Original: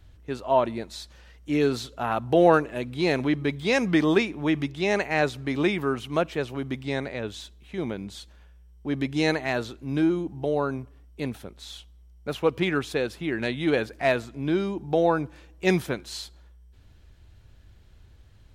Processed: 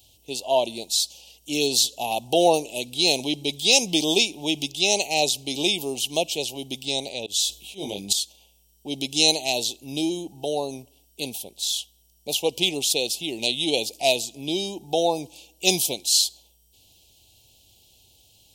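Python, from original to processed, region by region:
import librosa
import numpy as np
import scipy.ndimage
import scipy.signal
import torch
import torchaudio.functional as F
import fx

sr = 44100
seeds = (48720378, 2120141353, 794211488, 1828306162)

y = fx.chain(x, sr, fx.auto_swell(attack_ms=102.0),
    fx.doubler(ms=20.0, db=-3.5),
    fx.sustainer(db_per_s=22.0), at=(7.26, 8.13))
y = fx.dynamic_eq(y, sr, hz=6000.0, q=0.88, threshold_db=-49.0, ratio=4.0, max_db=5)
y = scipy.signal.sosfilt(scipy.signal.ellip(3, 1.0, 80, [810.0, 2800.0], 'bandstop', fs=sr, output='sos'), y)
y = fx.tilt_eq(y, sr, slope=4.5)
y = F.gain(torch.from_numpy(y), 4.5).numpy()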